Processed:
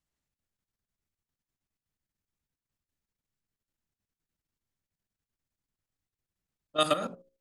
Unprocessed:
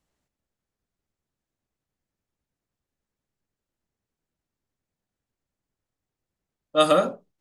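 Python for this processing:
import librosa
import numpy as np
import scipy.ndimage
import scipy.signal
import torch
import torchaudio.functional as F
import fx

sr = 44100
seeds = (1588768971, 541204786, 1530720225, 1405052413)

y = fx.peak_eq(x, sr, hz=550.0, db=-6.5, octaves=2.2)
y = fx.hum_notches(y, sr, base_hz=60, count=9)
y = fx.level_steps(y, sr, step_db=11)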